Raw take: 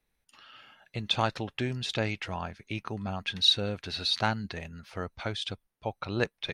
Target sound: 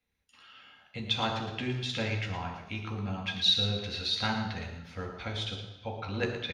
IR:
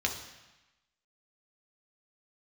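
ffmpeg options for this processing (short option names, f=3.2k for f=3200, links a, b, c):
-filter_complex "[0:a]aecho=1:1:113:0.335[a];[1:a]atrim=start_sample=2205[b];[a][b]afir=irnorm=-1:irlink=0,volume=-8.5dB"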